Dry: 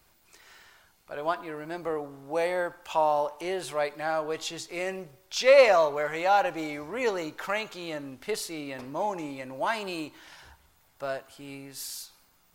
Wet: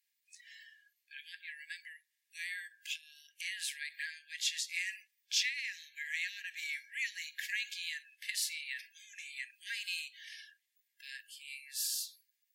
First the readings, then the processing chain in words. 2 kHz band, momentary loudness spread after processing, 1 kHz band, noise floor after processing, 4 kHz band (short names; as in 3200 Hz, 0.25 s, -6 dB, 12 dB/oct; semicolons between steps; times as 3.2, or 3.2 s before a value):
-4.5 dB, 17 LU, under -40 dB, -83 dBFS, -0.5 dB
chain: spectral noise reduction 19 dB; compressor 10:1, threshold -29 dBFS, peak gain reduction 16.5 dB; brick-wall FIR high-pass 1600 Hz; gain +2.5 dB